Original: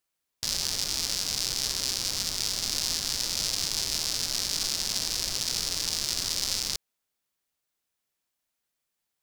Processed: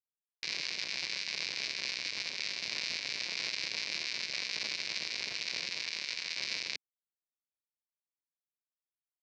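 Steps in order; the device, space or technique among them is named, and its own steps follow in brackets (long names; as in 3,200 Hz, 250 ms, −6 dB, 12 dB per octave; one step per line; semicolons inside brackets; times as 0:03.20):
0:05.83–0:06.39: Chebyshev high-pass filter 180 Hz, order 10
blown loudspeaker (dead-zone distortion −35.5 dBFS; loudspeaker in its box 160–4,000 Hz, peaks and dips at 260 Hz −4 dB, 800 Hz −6 dB, 1,300 Hz −8 dB, 2,300 Hz +9 dB, 3,300 Hz −9 dB)
level +2 dB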